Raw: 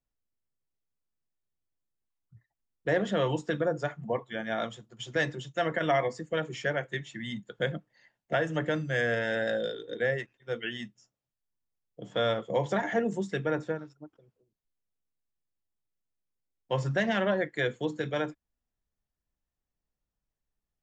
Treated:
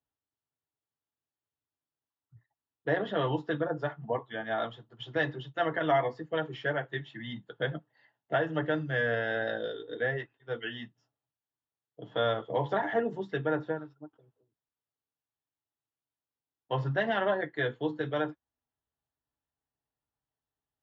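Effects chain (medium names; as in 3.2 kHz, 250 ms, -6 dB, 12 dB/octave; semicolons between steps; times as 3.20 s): cabinet simulation 110–3600 Hz, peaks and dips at 210 Hz -9 dB, 520 Hz -4 dB, 860 Hz +4 dB, 2.3 kHz -10 dB; comb of notches 180 Hz; trim +2 dB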